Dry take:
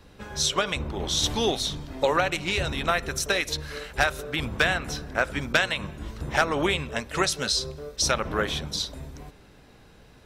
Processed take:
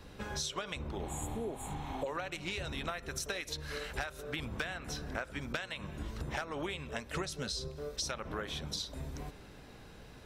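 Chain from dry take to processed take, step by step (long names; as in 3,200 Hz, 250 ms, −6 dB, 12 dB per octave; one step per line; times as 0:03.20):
0:01.09–0:02.04: healed spectral selection 690–6,700 Hz before
0:07.15–0:07.68: low-shelf EQ 400 Hz +8.5 dB
downward compressor 6 to 1, threshold −36 dBFS, peak gain reduction 19 dB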